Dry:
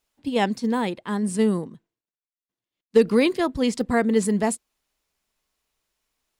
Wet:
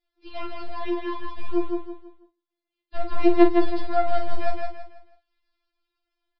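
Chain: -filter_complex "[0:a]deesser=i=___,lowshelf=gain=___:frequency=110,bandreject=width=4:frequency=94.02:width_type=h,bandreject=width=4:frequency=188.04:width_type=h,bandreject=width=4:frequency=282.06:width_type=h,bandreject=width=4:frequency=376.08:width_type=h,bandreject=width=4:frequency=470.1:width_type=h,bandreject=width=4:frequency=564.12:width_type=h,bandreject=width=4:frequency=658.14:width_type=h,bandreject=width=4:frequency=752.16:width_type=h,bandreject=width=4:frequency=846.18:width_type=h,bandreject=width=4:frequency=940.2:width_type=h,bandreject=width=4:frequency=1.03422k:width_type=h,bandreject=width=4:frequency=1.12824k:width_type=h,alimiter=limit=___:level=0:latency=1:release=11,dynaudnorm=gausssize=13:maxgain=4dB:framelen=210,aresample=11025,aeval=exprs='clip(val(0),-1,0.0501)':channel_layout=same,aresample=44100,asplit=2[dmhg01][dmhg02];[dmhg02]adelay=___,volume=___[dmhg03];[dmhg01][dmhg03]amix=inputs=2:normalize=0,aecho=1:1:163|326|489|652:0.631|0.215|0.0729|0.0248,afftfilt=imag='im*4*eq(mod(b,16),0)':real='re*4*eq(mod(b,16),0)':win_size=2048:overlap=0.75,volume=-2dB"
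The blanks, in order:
1, 3.5, -13.5dB, 43, -8dB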